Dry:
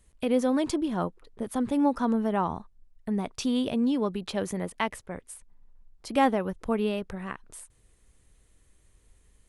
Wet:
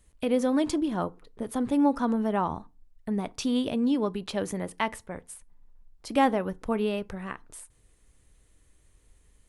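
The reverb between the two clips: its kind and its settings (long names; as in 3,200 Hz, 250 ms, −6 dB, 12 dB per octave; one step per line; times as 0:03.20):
feedback delay network reverb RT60 0.3 s, low-frequency decay 1.3×, high-frequency decay 0.65×, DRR 16 dB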